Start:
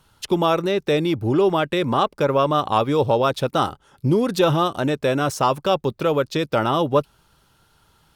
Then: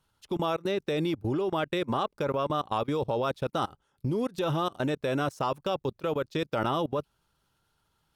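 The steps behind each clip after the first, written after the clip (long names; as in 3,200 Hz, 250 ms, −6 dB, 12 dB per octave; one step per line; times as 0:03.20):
output level in coarse steps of 23 dB
level −4.5 dB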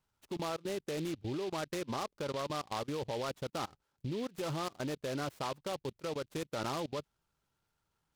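short delay modulated by noise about 3,100 Hz, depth 0.061 ms
level −8.5 dB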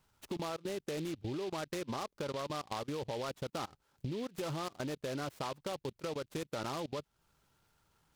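downward compressor 2.5 to 1, threshold −50 dBFS, peak gain reduction 11.5 dB
level +9 dB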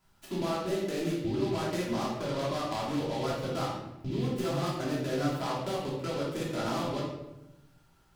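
rectangular room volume 370 cubic metres, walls mixed, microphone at 3 metres
level −2 dB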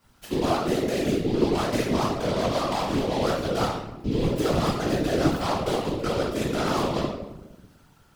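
random phases in short frames
level +7 dB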